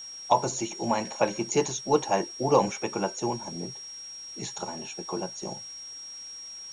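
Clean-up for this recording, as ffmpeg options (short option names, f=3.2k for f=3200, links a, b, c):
-af "bandreject=f=5.6k:w=30,afftdn=nr=30:nf=-42"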